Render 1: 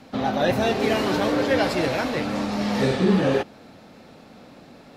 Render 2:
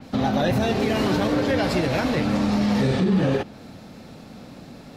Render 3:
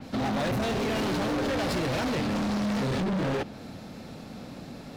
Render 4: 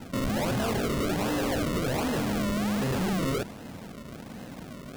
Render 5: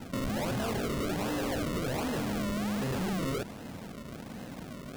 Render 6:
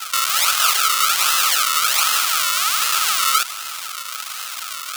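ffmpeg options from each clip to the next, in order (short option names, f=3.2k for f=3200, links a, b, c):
-af "bass=f=250:g=8,treble=f=4k:g=5,alimiter=limit=-14dB:level=0:latency=1:release=93,adynamicequalizer=threshold=0.00501:dfrequency=4500:dqfactor=0.7:tfrequency=4500:tqfactor=0.7:attack=5:release=100:ratio=0.375:range=2.5:mode=cutabove:tftype=highshelf,volume=1.5dB"
-af "volume=26dB,asoftclip=hard,volume=-26dB"
-af "acrusher=samples=37:mix=1:aa=0.000001:lfo=1:lforange=37:lforate=1.3"
-af "acompressor=threshold=-30dB:ratio=6,volume=-1dB"
-af "aexciter=amount=5.3:drive=7.1:freq=2.4k,highpass=f=1.3k:t=q:w=12,volume=7dB"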